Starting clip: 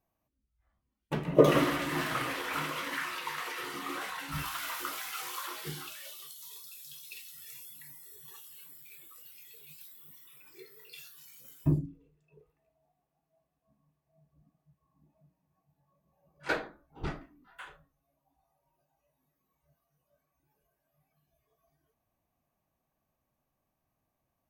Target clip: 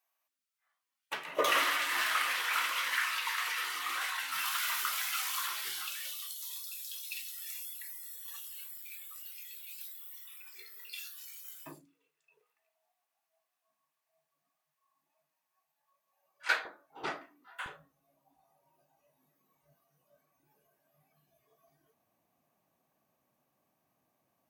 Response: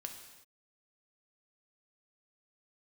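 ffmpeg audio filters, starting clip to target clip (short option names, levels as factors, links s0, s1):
-af "asetnsamples=n=441:p=0,asendcmd='16.65 highpass f 540;17.66 highpass f 170',highpass=1300,volume=1.88"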